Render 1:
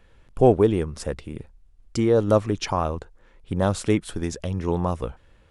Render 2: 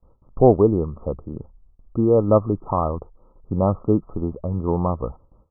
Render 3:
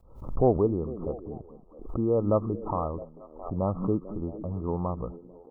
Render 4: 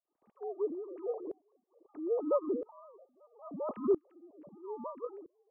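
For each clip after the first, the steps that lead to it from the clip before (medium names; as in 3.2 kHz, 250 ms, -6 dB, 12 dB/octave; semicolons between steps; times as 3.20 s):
gate with hold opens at -45 dBFS; Chebyshev low-pass 1.3 kHz, order 10; trim +3 dB
repeats whose band climbs or falls 222 ms, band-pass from 210 Hz, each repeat 0.7 oct, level -11 dB; swell ahead of each attack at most 95 dB/s; trim -8.5 dB
formants replaced by sine waves; sawtooth tremolo in dB swelling 0.76 Hz, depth 27 dB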